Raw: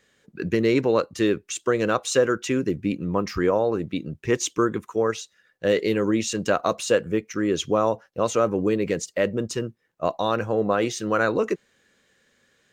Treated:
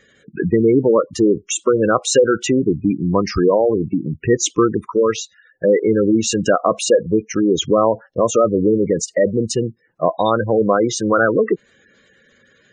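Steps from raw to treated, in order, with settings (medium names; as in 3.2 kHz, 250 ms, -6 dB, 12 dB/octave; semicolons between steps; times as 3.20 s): spectral gate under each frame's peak -15 dB strong; in parallel at 0 dB: compression, threshold -29 dBFS, peak gain reduction 13.5 dB; on the sum: trim +5 dB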